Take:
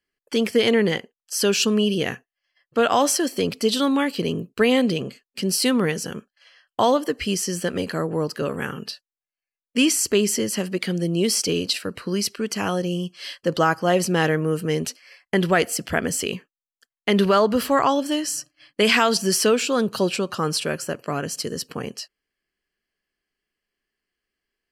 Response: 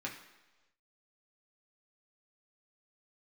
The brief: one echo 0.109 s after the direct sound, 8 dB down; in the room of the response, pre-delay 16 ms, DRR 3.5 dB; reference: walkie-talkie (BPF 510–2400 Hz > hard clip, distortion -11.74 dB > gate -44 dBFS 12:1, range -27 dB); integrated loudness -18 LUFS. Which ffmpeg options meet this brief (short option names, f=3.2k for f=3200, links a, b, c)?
-filter_complex "[0:a]aecho=1:1:109:0.398,asplit=2[a][b];[1:a]atrim=start_sample=2205,adelay=16[c];[b][c]afir=irnorm=-1:irlink=0,volume=-5dB[d];[a][d]amix=inputs=2:normalize=0,highpass=510,lowpass=2.4k,asoftclip=type=hard:threshold=-17.5dB,agate=range=-27dB:threshold=-44dB:ratio=12,volume=8.5dB"